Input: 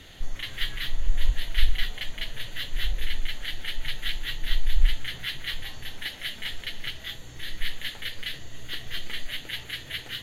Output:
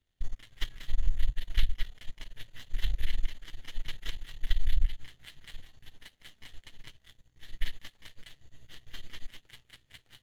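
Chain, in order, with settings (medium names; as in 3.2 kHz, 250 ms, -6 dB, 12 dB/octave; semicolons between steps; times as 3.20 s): power-law waveshaper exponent 2; compression 12:1, threshold -26 dBFS, peak gain reduction 15.5 dB; bass shelf 170 Hz +9.5 dB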